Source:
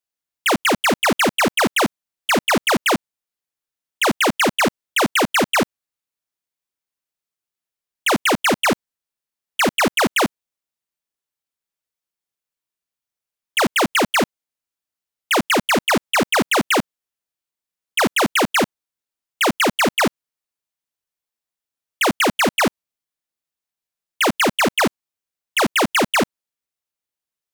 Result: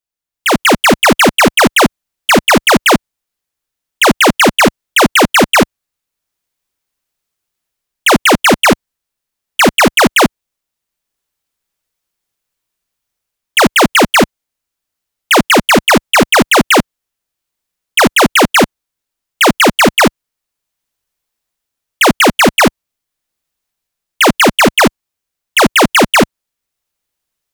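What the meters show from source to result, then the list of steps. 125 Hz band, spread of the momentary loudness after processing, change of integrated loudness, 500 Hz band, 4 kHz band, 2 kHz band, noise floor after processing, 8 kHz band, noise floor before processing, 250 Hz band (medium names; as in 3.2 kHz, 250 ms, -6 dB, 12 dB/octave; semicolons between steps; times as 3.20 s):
+10.5 dB, 6 LU, +9.0 dB, +9.0 dB, +9.0 dB, +9.0 dB, -79 dBFS, +9.0 dB, under -85 dBFS, +9.5 dB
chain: bass shelf 66 Hz +10.5 dB; level rider gain up to 12 dB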